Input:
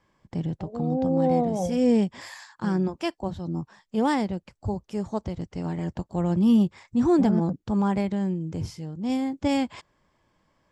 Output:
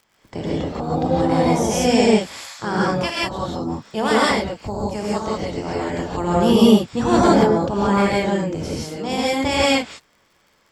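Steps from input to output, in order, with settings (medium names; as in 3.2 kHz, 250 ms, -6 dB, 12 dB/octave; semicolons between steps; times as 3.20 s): spectral peaks clipped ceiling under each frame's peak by 17 dB; gated-style reverb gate 200 ms rising, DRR -6 dB; crackle 63 per s -44 dBFS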